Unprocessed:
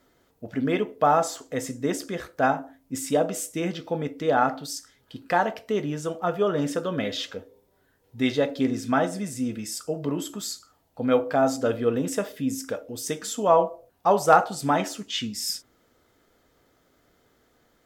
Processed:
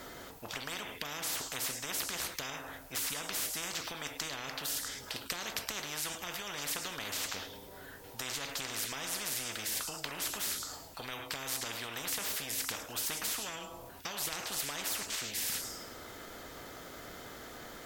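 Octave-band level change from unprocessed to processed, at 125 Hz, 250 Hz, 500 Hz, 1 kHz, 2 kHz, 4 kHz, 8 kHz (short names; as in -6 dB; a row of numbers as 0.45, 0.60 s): -16.5, -21.5, -22.0, -18.5, -6.0, -1.0, 0.0 dB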